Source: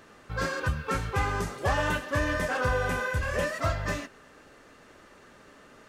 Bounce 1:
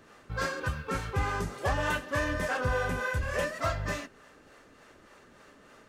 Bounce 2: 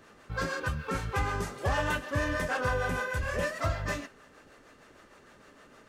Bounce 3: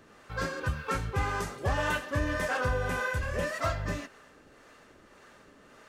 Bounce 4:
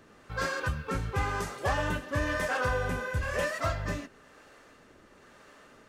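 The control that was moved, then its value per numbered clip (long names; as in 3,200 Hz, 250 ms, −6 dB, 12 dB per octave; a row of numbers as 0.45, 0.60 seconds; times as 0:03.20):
two-band tremolo in antiphase, speed: 3.4, 6.5, 1.8, 1 Hertz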